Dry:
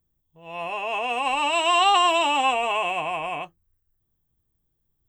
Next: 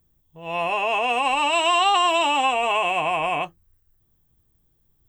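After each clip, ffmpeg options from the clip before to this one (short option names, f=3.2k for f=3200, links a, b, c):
-af "acompressor=threshold=-29dB:ratio=2.5,volume=8.5dB"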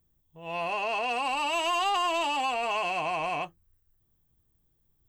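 -af "asoftclip=type=tanh:threshold=-16.5dB,volume=-5.5dB"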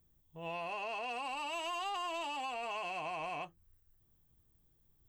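-af "acompressor=threshold=-38dB:ratio=6"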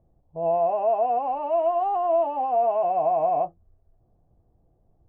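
-af "lowpass=f=670:t=q:w=4.9,volume=9dB"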